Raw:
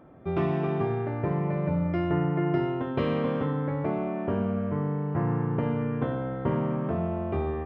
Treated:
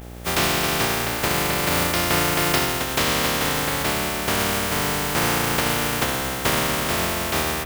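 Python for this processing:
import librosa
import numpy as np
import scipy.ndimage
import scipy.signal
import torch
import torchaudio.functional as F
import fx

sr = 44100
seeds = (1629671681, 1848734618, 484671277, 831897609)

y = fx.spec_flatten(x, sr, power=0.21)
y = fx.dmg_buzz(y, sr, base_hz=60.0, harmonics=14, level_db=-43.0, tilt_db=-5, odd_only=False)
y = y * 10.0 ** (5.5 / 20.0)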